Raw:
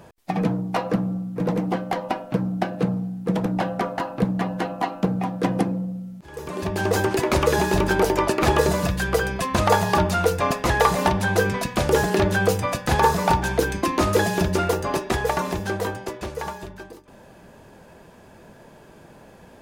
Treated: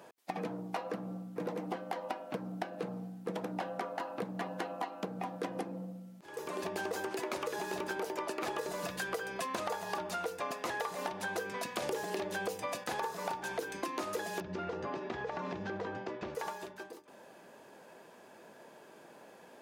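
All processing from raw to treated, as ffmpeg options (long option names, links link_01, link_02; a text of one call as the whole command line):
ffmpeg -i in.wav -filter_complex "[0:a]asettb=1/sr,asplit=3[link_01][link_02][link_03];[link_01]atrim=end=11.824[link_04];[link_02]atrim=start=11.82:end=12.84,asetpts=PTS-STARTPTS,afade=type=in:duration=0.004:curve=qsin,afade=type=out:start_time=1.016:duration=0.004:curve=qsin,equalizer=frequency=1400:width=4.1:gain=-6.5,acontrast=61[link_05];[link_03]atrim=start=12.836[link_06];[link_04][link_05]acrossfade=duration=0.004:curve1=hsin:curve2=qsin[link_07];[link_07][link_06]acrossfade=duration=0.004:curve1=qsin:curve2=hsin,asettb=1/sr,asplit=3[link_08][link_09][link_10];[link_08]atrim=end=14.404[link_11];[link_09]atrim=start=14.4:end=16.35,asetpts=PTS-STARTPTS,afade=type=in:duration=0.004:curve=qsin,afade=type=out:start_time=1.946:duration=0.004:curve=qsin,lowpass=frequency=6200:width=0.5412,lowpass=frequency=6200:width=1.3066,acompressor=threshold=-28dB:ratio=4:attack=3.2:release=140:knee=1:detection=peak,bass=frequency=250:gain=12,treble=frequency=4000:gain=-10[link_12];[link_10]atrim=start=16.346[link_13];[link_11][link_12]acrossfade=duration=0.004:curve1=hsin:curve2=qsin[link_14];[link_14][link_13]acrossfade=duration=0.004:curve1=qsin:curve2=hsin,highpass=310,acompressor=threshold=-28dB:ratio=10,volume=-5.5dB" out.wav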